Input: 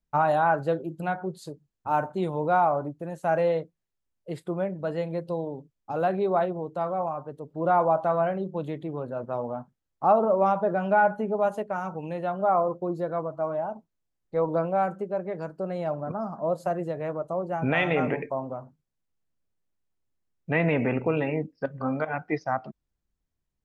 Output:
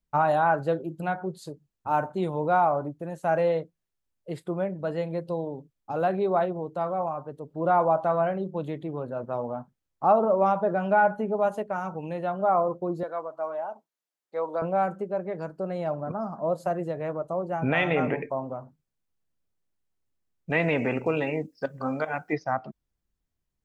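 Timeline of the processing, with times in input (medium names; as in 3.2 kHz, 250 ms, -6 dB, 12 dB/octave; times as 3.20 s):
13.03–14.62 s: Bessel high-pass 610 Hz
20.50–22.33 s: tone controls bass -4 dB, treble +14 dB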